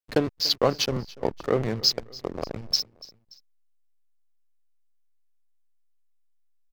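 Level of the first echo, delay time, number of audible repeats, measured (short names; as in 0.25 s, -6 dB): -21.0 dB, 0.289 s, 2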